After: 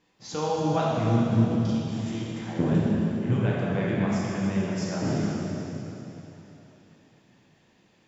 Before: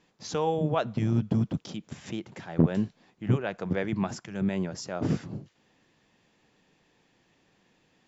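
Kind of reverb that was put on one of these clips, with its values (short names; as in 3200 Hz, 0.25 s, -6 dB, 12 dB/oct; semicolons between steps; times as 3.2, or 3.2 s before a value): plate-style reverb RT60 3.5 s, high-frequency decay 0.95×, DRR -6.5 dB; gain -4 dB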